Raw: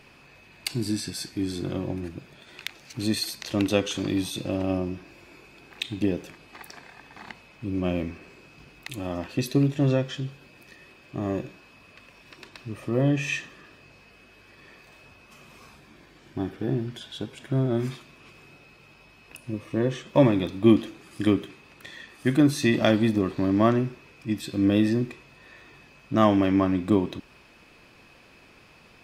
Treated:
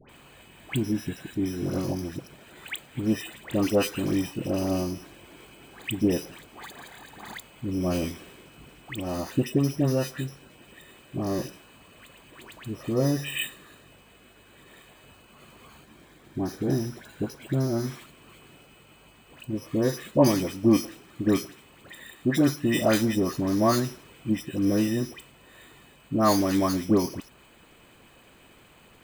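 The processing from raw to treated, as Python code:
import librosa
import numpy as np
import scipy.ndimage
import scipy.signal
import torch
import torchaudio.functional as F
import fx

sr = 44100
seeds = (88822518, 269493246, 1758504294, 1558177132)

p1 = np.repeat(scipy.signal.resample_poly(x, 1, 8), 8)[:len(x)]
p2 = fx.rider(p1, sr, range_db=3, speed_s=0.5)
p3 = p1 + (p2 * librosa.db_to_amplitude(-1.0))
p4 = fx.hpss(p3, sr, part='percussive', gain_db=5)
p5 = fx.dispersion(p4, sr, late='highs', ms=92.0, hz=1400.0)
y = p5 * librosa.db_to_amplitude(-7.5)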